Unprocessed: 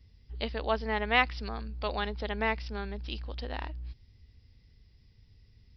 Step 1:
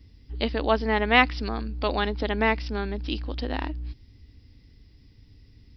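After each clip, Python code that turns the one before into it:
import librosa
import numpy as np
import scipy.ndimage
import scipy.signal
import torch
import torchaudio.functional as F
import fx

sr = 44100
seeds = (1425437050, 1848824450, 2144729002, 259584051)

y = fx.peak_eq(x, sr, hz=290.0, db=12.0, octaves=0.46)
y = y * librosa.db_to_amplitude(6.0)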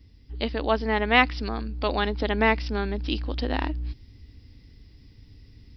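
y = fx.rider(x, sr, range_db=3, speed_s=2.0)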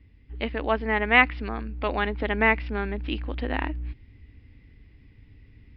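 y = fx.ladder_lowpass(x, sr, hz=2800.0, resonance_pct=40)
y = y * librosa.db_to_amplitude(6.5)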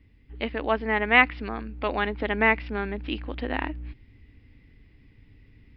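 y = fx.peak_eq(x, sr, hz=68.0, db=-5.0, octaves=1.2)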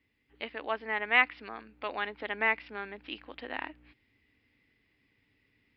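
y = fx.highpass(x, sr, hz=760.0, slope=6)
y = y * librosa.db_to_amplitude(-5.0)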